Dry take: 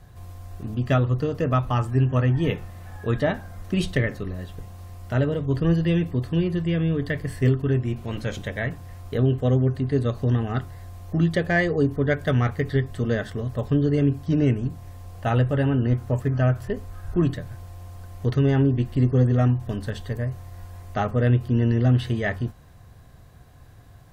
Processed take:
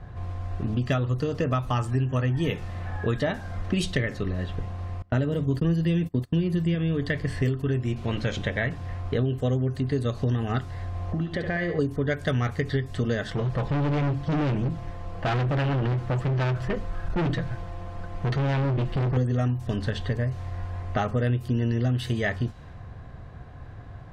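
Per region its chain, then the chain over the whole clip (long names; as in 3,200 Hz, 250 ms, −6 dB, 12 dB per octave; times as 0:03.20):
0:05.02–0:06.75: parametric band 210 Hz +6.5 dB 1.4 octaves + noise gate −26 dBFS, range −27 dB
0:10.88–0:11.79: downward compressor 4 to 1, threshold −32 dBFS + flutter between parallel walls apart 11.8 metres, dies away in 0.53 s
0:13.28–0:19.17: comb filter 6 ms, depth 57% + gain into a clipping stage and back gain 26.5 dB
whole clip: low-pass that shuts in the quiet parts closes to 1,700 Hz, open at −16.5 dBFS; high-shelf EQ 3,600 Hz +9 dB; downward compressor 4 to 1, threshold −31 dBFS; level +7 dB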